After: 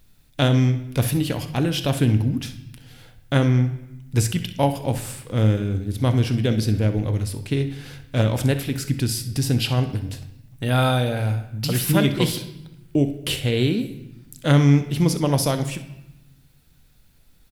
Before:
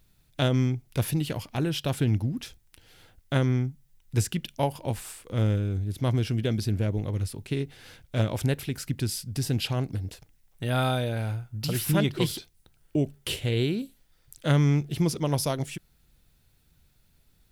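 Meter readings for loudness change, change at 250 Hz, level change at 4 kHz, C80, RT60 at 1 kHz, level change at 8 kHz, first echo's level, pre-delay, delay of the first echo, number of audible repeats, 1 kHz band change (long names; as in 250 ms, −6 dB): +6.0 dB, +7.0 dB, +6.0 dB, 14.5 dB, 0.90 s, +6.0 dB, −14.5 dB, 4 ms, 64 ms, 1, +6.0 dB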